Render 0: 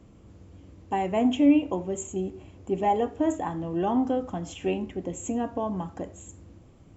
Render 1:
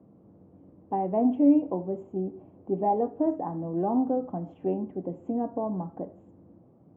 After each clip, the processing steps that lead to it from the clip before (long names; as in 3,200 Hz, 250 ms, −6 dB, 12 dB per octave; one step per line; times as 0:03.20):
Chebyshev band-pass filter 160–770 Hz, order 2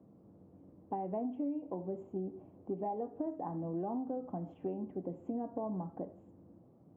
downward compressor 12 to 1, threshold −29 dBFS, peak gain reduction 14.5 dB
level −4.5 dB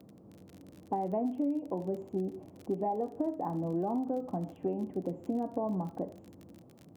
surface crackle 38 per second −47 dBFS
level +5 dB